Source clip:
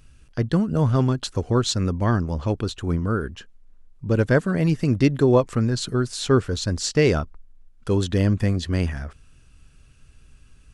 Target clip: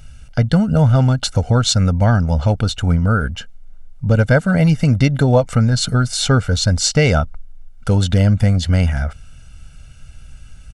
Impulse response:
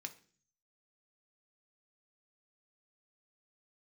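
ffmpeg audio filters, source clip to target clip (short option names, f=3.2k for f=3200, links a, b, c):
-af "aecho=1:1:1.4:0.79,acompressor=threshold=-20dB:ratio=2,volume=8dB"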